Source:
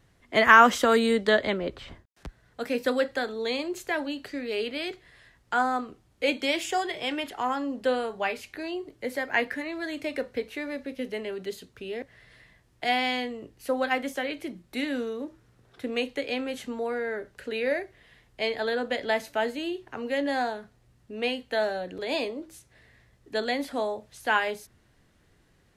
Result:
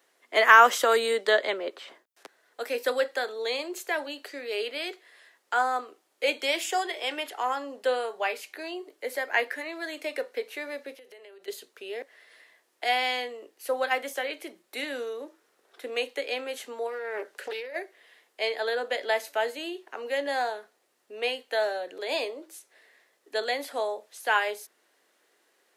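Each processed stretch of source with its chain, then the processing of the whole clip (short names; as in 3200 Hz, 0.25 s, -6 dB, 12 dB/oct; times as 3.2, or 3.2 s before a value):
10.94–11.48 bell 220 Hz -8.5 dB 0.54 oct + compressor 12:1, threshold -45 dBFS
16.87–17.76 negative-ratio compressor -34 dBFS + Doppler distortion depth 0.41 ms
whole clip: HPF 380 Hz 24 dB/oct; high shelf 10000 Hz +8.5 dB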